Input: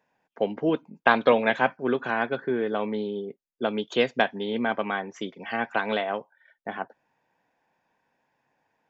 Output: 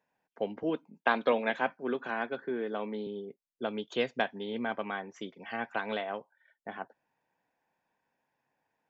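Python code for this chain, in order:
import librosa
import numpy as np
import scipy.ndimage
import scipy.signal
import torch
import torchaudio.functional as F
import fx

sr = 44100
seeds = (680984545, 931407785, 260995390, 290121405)

y = fx.highpass(x, sr, hz=160.0, slope=24, at=(0.63, 3.07))
y = y * librosa.db_to_amplitude(-7.5)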